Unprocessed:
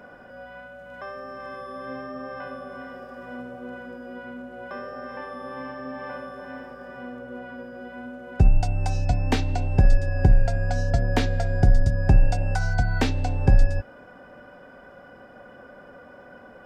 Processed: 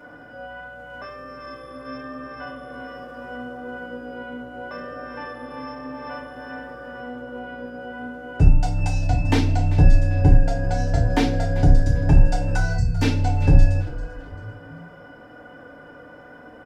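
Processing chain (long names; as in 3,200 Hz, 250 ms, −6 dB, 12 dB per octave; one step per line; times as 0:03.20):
gain on a spectral selection 0:12.78–0:13.02, 240–4,300 Hz −27 dB
echo with shifted repeats 392 ms, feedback 35%, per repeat −65 Hz, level −16 dB
feedback delay network reverb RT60 0.35 s, low-frequency decay 1.45×, high-frequency decay 1×, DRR −3 dB
level −2.5 dB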